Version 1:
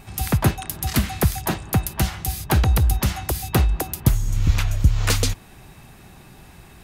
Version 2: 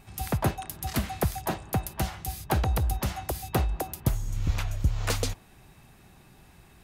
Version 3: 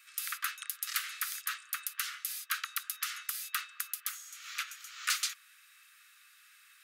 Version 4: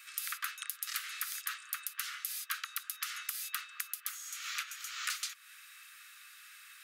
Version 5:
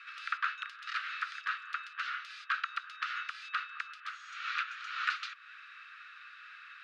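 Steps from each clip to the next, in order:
dynamic bell 660 Hz, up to +7 dB, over -38 dBFS, Q 0.92; trim -9 dB
steep high-pass 1.2 kHz 96 dB/octave; trim +1.5 dB
compression 4:1, threshold -42 dBFS, peak gain reduction 13.5 dB; trim +6 dB
cabinet simulation 320–3300 Hz, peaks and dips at 330 Hz +4 dB, 490 Hz +7 dB, 750 Hz -3 dB, 1.4 kHz +4 dB, 2.1 kHz -6 dB, 3.2 kHz -6 dB; trim +7 dB

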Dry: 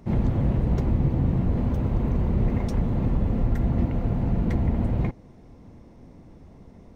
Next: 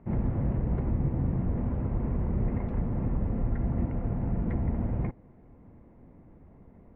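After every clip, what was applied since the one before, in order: low-pass 2.2 kHz 24 dB/octave; trim -5.5 dB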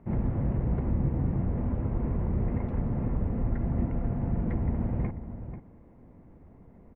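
echo from a far wall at 84 m, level -10 dB

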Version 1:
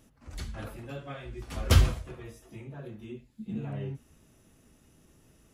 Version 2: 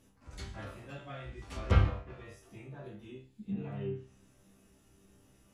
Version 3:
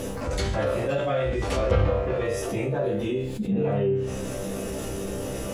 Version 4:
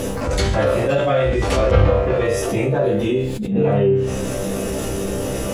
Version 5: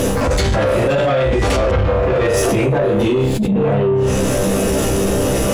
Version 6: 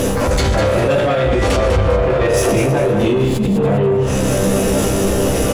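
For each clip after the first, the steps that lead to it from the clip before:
chord resonator C2 fifth, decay 0.39 s; low-pass that closes with the level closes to 1.9 kHz, closed at -38 dBFS; trim +8.5 dB
peaking EQ 520 Hz +13.5 dB 0.67 oct; level flattener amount 70%
attacks held to a fixed rise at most 100 dB/s; trim +8 dB
in parallel at +3 dB: compressor with a negative ratio -21 dBFS, ratio -1; on the sum: saturation -10 dBFS, distortion -14 dB
feedback delay 200 ms, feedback 36%, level -8 dB

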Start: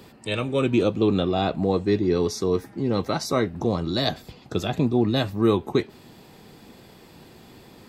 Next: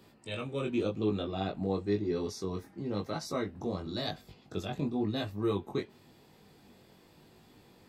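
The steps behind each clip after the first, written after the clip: chorus 0.95 Hz, delay 19 ms, depth 2.3 ms; trim -8 dB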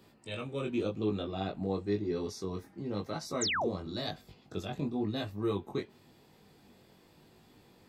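painted sound fall, 3.41–3.69 s, 310–8300 Hz -30 dBFS; trim -1.5 dB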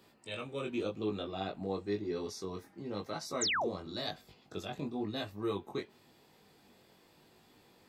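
bass shelf 280 Hz -8 dB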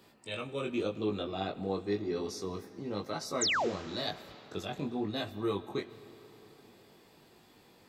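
reverberation RT60 4.3 s, pre-delay 50 ms, DRR 15.5 dB; trim +2.5 dB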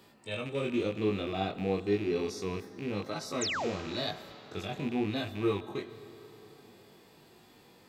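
rattle on loud lows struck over -43 dBFS, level -35 dBFS; harmonic-percussive split percussive -9 dB; trim +5 dB

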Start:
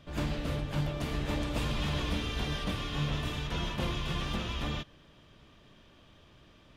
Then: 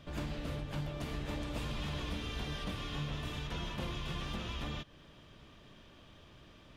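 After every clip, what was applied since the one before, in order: compression 2:1, threshold -42 dBFS, peak gain reduction 8.5 dB; trim +1 dB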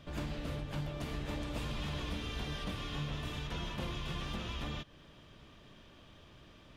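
no audible change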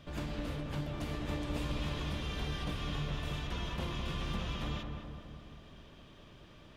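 filtered feedback delay 207 ms, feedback 63%, low-pass 1.6 kHz, level -4.5 dB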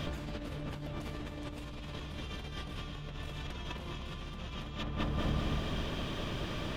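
compressor with a negative ratio -48 dBFS, ratio -1; trim +9 dB

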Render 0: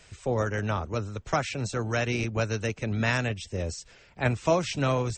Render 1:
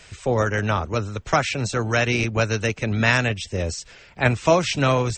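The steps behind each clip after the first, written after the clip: peaking EQ 2.5 kHz +3.5 dB 2.7 oct; trim +5.5 dB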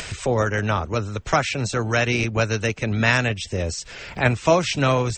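upward compressor, threshold -22 dBFS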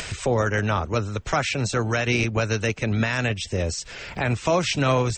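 peak limiter -11.5 dBFS, peak gain reduction 10 dB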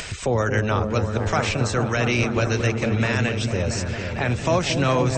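delay with an opening low-pass 226 ms, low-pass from 400 Hz, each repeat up 1 oct, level -3 dB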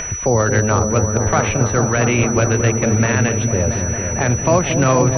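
local Wiener filter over 9 samples; class-D stage that switches slowly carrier 5.9 kHz; trim +6 dB

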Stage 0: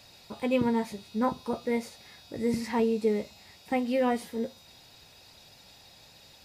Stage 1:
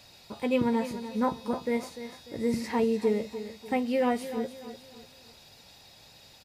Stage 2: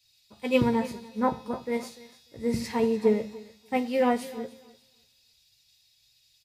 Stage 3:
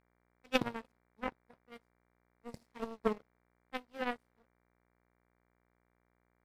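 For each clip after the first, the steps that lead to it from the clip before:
feedback delay 296 ms, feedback 38%, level -12 dB
on a send at -11.5 dB: reverberation RT60 0.70 s, pre-delay 4 ms; on the sum: three bands expanded up and down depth 100%
power-law waveshaper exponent 3; mains buzz 60 Hz, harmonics 39, -76 dBFS -3 dB/octave

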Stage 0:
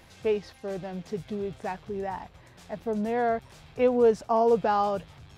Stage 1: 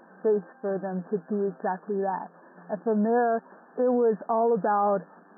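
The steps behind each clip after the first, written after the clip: FFT band-pass 170–1800 Hz; peak limiter -21.5 dBFS, peak gain reduction 9 dB; trim +5 dB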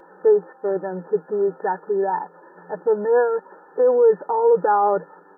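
comb 2.2 ms, depth 93%; trim +3 dB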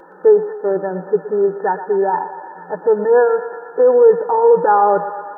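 thinning echo 119 ms, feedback 79%, high-pass 480 Hz, level -11 dB; trim +5 dB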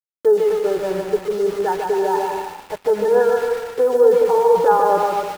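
small samples zeroed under -26.5 dBFS; flange 1.1 Hz, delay 1.9 ms, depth 1.9 ms, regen -70%; bouncing-ball echo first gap 150 ms, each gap 0.7×, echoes 5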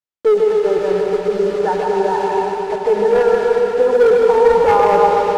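distance through air 72 m; hard clipper -11 dBFS, distortion -16 dB; reverberation RT60 5.2 s, pre-delay 77 ms, DRR 2.5 dB; trim +2.5 dB

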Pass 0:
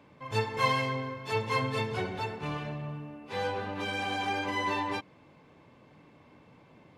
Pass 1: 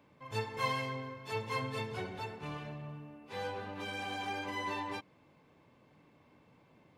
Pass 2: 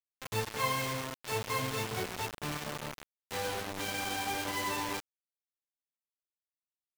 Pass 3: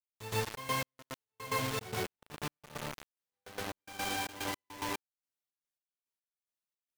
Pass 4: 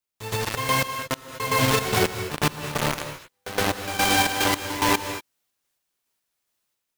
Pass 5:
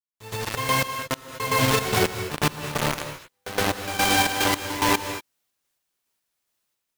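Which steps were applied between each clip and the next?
treble shelf 11 kHz +8 dB; trim -7 dB
in parallel at +1.5 dB: compression 5:1, threshold -48 dBFS, peak gain reduction 17.5 dB; on the sum: bit crusher 6-bit
trance gate "..xx.x..x" 109 bpm -60 dB; pre-echo 117 ms -12 dB
peak limiter -29 dBFS, peak gain reduction 8.5 dB; level rider gain up to 7.5 dB; gated-style reverb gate 260 ms rising, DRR 9 dB; trim +9 dB
fade-in on the opening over 0.58 s

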